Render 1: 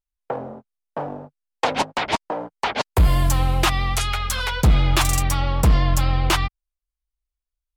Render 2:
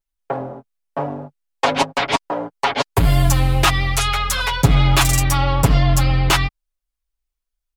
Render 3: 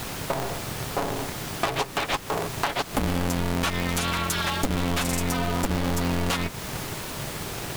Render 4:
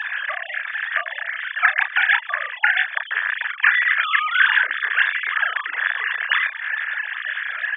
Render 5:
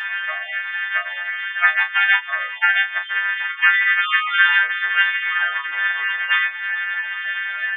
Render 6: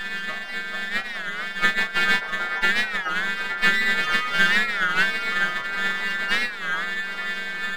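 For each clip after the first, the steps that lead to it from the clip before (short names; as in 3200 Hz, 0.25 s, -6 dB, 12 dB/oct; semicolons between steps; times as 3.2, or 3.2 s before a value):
comb 7.2 ms, depth 93%; gain +1.5 dB
added noise pink -33 dBFS; compressor 6:1, threshold -23 dBFS, peak gain reduction 15 dB; polarity switched at an audio rate 130 Hz
sine-wave speech; resonant high-pass 1700 Hz, resonance Q 9.6; doubler 33 ms -6.5 dB; gain -1 dB
frequency quantiser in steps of 2 st; gain -2.5 dB
half-wave gain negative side -12 dB; band-limited delay 0.436 s, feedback 71%, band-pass 850 Hz, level -3.5 dB; record warp 33 1/3 rpm, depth 160 cents; gain -1.5 dB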